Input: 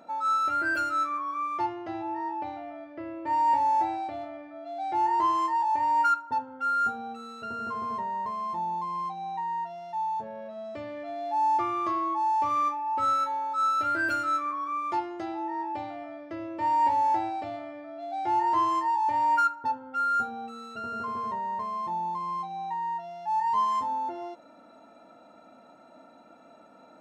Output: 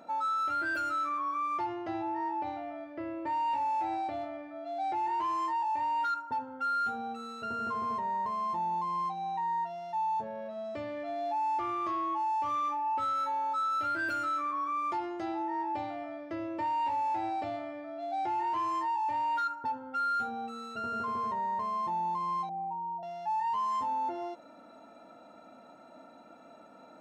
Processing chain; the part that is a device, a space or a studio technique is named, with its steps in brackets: 22.49–23.03 steep low-pass 860 Hz 36 dB/oct; soft clipper into limiter (soft clip -20 dBFS, distortion -20 dB; limiter -27 dBFS, peak gain reduction 6.5 dB)

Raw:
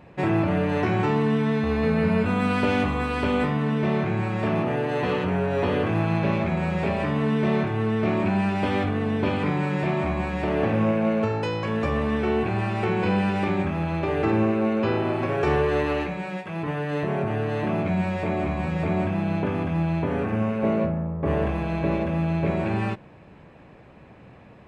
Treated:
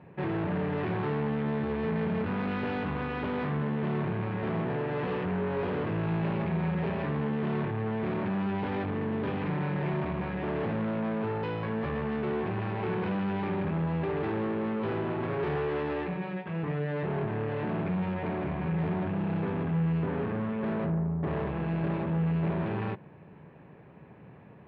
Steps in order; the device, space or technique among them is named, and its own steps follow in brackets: 18.14–18.78 steep low-pass 3300 Hz; guitar amplifier (tube stage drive 29 dB, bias 0.7; tone controls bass +5 dB, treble -11 dB; speaker cabinet 98–4200 Hz, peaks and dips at 160 Hz +5 dB, 410 Hz +6 dB, 930 Hz +4 dB, 1700 Hz +3 dB); gain -3 dB

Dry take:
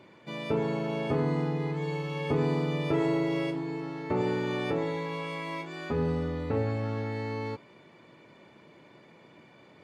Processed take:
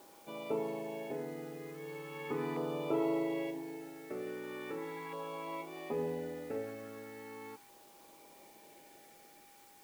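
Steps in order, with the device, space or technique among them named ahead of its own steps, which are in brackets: shortwave radio (BPF 320–2500 Hz; tremolo 0.35 Hz, depth 55%; LFO notch saw down 0.39 Hz 540–2200 Hz; whine 810 Hz -59 dBFS; white noise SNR 22 dB); gain -2.5 dB

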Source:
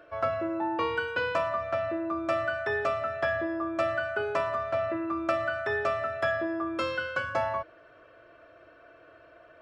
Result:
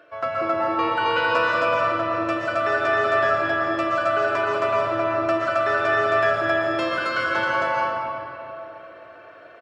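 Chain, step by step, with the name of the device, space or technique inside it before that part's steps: stadium PA (HPF 140 Hz 12 dB/oct; bell 3200 Hz +4 dB 2.9 oct; loudspeakers at several distances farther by 64 m -11 dB, 92 m -1 dB; reverb RT60 2.9 s, pre-delay 0.113 s, DRR -3 dB)

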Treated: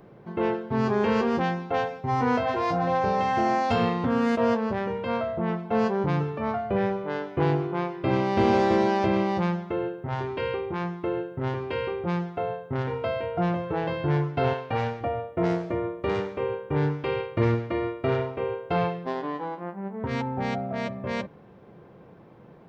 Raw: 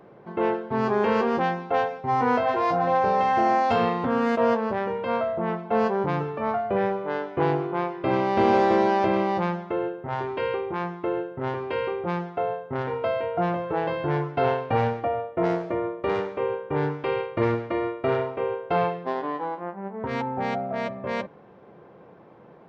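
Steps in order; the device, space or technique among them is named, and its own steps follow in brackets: 14.53–15.01 low shelf 320 Hz -9.5 dB; smiley-face EQ (low shelf 150 Hz +9 dB; bell 800 Hz -4 dB 2.5 oct; high shelf 5200 Hz +6 dB)

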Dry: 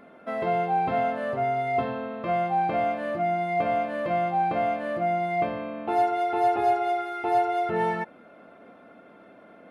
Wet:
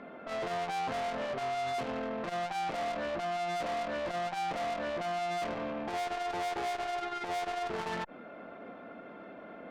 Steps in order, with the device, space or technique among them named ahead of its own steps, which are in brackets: valve radio (BPF 110–4200 Hz; tube stage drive 36 dB, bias 0.35; core saturation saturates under 300 Hz); gain +4.5 dB

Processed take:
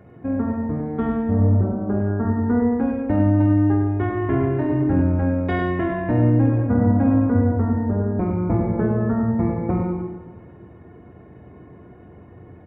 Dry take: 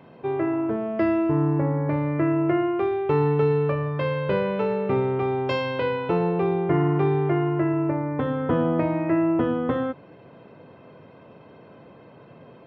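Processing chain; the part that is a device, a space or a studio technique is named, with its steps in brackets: 1.61–2.25 tone controls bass -5 dB, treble -9 dB; monster voice (pitch shift -6.5 st; low shelf 120 Hz +6.5 dB; echo 0.102 s -7 dB; reverb RT60 1.4 s, pre-delay 6 ms, DRR 4 dB)

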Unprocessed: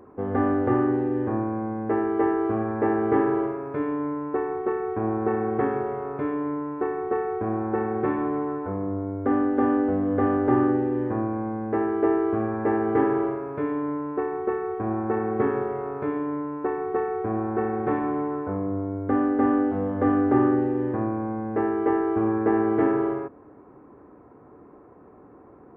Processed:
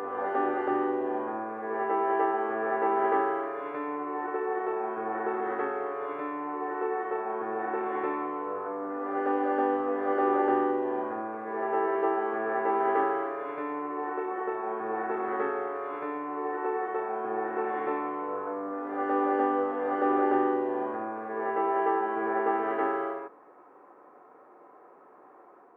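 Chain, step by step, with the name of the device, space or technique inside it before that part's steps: ghost voice (reverse; reverb RT60 1.4 s, pre-delay 63 ms, DRR -1 dB; reverse; HPF 600 Hz 12 dB/oct); gain -1.5 dB

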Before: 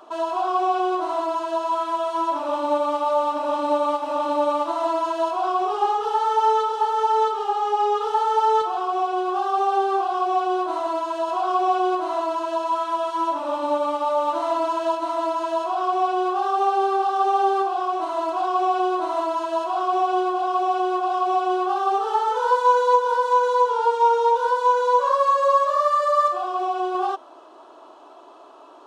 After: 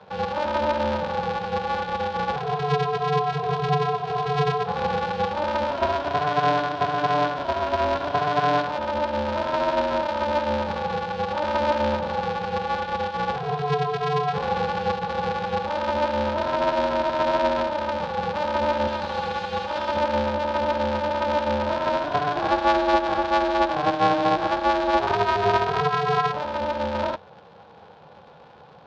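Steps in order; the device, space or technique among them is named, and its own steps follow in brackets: 18.87–19.97 tilt +4 dB/oct; ring modulator pedal into a guitar cabinet (polarity switched at an audio rate 150 Hz; speaker cabinet 78–4300 Hz, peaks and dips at 84 Hz +7 dB, 150 Hz +4 dB, 260 Hz -9 dB, 1200 Hz -9 dB, 2000 Hz -6 dB, 2900 Hz -3 dB)

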